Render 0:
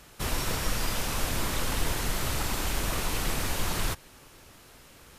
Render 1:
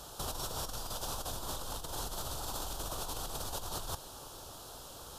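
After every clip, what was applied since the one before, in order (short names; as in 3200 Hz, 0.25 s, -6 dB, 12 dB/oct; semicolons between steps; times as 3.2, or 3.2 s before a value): EQ curve 120 Hz 0 dB, 210 Hz -4 dB, 780 Hz +7 dB, 1400 Hz +1 dB, 2100 Hz -18 dB, 3300 Hz +4 dB; negative-ratio compressor -34 dBFS, ratio -1; gain -5 dB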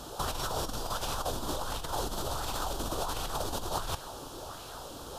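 high shelf 6400 Hz -6.5 dB; LFO bell 1.4 Hz 240–2400 Hz +9 dB; gain +5 dB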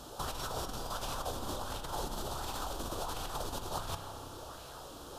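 spring tank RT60 2.9 s, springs 31 ms, chirp 55 ms, DRR 7 dB; gain -5 dB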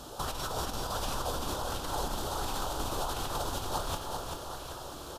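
feedback echo 0.389 s, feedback 49%, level -5 dB; gain +3 dB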